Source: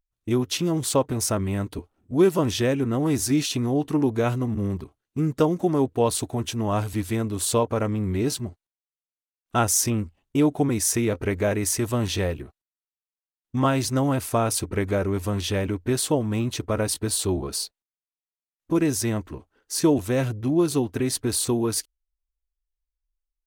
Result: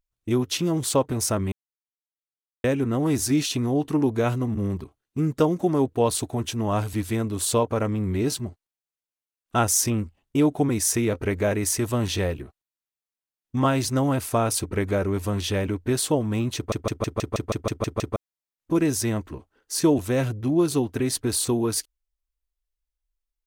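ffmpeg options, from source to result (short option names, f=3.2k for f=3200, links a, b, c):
-filter_complex "[0:a]asplit=13[a][b][c][d][e][f][g][h][i][j][k][l][m];[a]atrim=end=1.52,asetpts=PTS-STARTPTS,afade=t=out:st=1.516:d=0.004:c=hsin[n];[b]atrim=start=1.52:end=2.64,asetpts=PTS-STARTPTS,volume=0[o];[c]atrim=start=2.64:end=16.722,asetpts=PTS-STARTPTS,afade=t=in:d=0.004:c=hsin[p];[d]atrim=start=16.558:end=16.722[q];[e]atrim=start=16.558:end=16.722[r];[f]atrim=start=16.558:end=16.722[s];[g]atrim=start=16.558:end=16.722[t];[h]atrim=start=16.558:end=16.722[u];[i]atrim=start=16.558:end=16.722[v];[j]atrim=start=16.558:end=16.722[w];[k]atrim=start=16.558:end=16.722[x];[l]atrim=start=16.558:end=16.722[y];[m]atrim=start=18.158[z];[n][o][p]concat=n=3:v=0:a=1[aa];[aa][q]acrossfade=d=0.004:c1=hsin:c2=hsin[ab];[ab][r]acrossfade=d=0.004:c1=hsin:c2=hsin[ac];[ac][s]acrossfade=d=0.004:c1=hsin:c2=hsin[ad];[ad][t]acrossfade=d=0.004:c1=hsin:c2=hsin[ae];[ae][u]acrossfade=d=0.004:c1=hsin:c2=hsin[af];[af][v]acrossfade=d=0.004:c1=hsin:c2=hsin[ag];[ag][w]acrossfade=d=0.004:c1=hsin:c2=hsin[ah];[ah][x]acrossfade=d=0.004:c1=hsin:c2=hsin[ai];[ai][y]acrossfade=d=0.004:c1=hsin:c2=hsin[aj];[aj][z]acrossfade=d=0.004:c1=hsin:c2=hsin"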